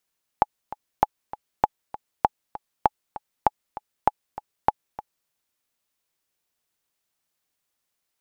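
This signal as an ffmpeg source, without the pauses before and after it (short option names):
-f lavfi -i "aevalsrc='pow(10,(-3-16.5*gte(mod(t,2*60/197),60/197))/20)*sin(2*PI*846*mod(t,60/197))*exp(-6.91*mod(t,60/197)/0.03)':d=4.87:s=44100"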